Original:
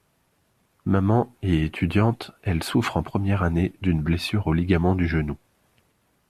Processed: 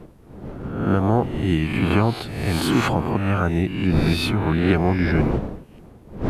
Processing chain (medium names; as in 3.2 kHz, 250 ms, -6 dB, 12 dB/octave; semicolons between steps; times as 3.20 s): reverse spectral sustain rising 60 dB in 0.89 s; wind noise 300 Hz -30 dBFS